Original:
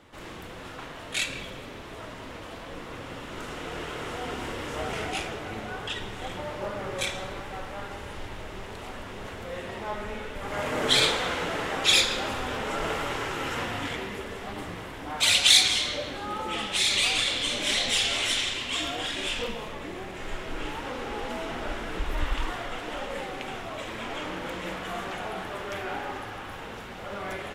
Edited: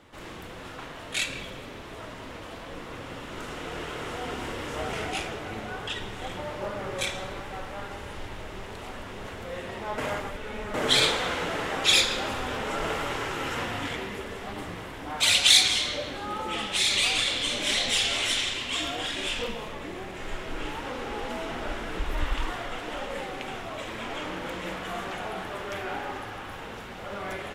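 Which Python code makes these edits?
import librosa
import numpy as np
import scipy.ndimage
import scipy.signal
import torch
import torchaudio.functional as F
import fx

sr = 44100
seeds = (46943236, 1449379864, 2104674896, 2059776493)

y = fx.edit(x, sr, fx.reverse_span(start_s=9.98, length_s=0.76), tone=tone)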